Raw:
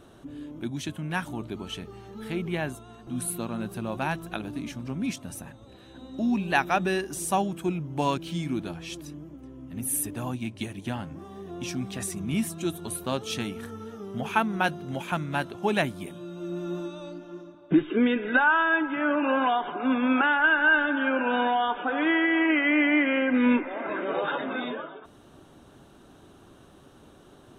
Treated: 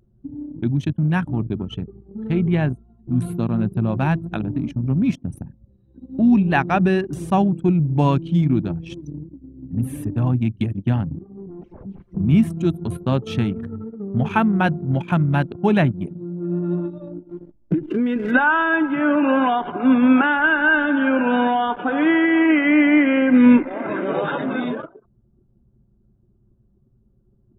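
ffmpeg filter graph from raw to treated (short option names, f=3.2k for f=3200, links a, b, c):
-filter_complex "[0:a]asettb=1/sr,asplit=3[a][b][c];[a]atrim=end=11.194[d];[b]atrim=start=11.19:end=12.17,asetpts=PTS-STARTPTS,afade=t=in:d=0.004:c=qsin,afade=t=out:st=0.976:d=0.004:c=qsin,aeval=exprs='0.0158*(abs(mod(val(0)/0.0158+3,4)-2)-1)':c=same,lowpass=f=2.7k:p=1[e];[c]atrim=start=12.166[f];[d][e]acrossfade=d=0.004:c1=hsin:c2=qsin[g];[g][f]acrossfade=d=0.004:c1=qsin:c2=hsin,asettb=1/sr,asplit=3[h][i][j];[h]atrim=end=17.294[k];[i]atrim=start=17.29:end=18.31,asetpts=PTS-STARTPTS,afade=t=in:d=0.004:c=qsin,afade=t=out:st=1.016:d=0.004:c=qsin,acrusher=bits=8:dc=4:mix=0:aa=0.000001,acompressor=threshold=-26dB:ratio=8:attack=3.2:release=140:knee=1:detection=peak[l];[j]atrim=start=18.306[m];[k][l]acrossfade=d=0.004:c1=hsin:c2=qsin[n];[n][m]acrossfade=d=0.004:c1=qsin:c2=hsin,anlmdn=3.98,equalizer=f=120:w=0.61:g=13.5,acrossover=split=3300[o][p];[p]acompressor=threshold=-49dB:ratio=4:attack=1:release=60[q];[o][q]amix=inputs=2:normalize=0,volume=3.5dB"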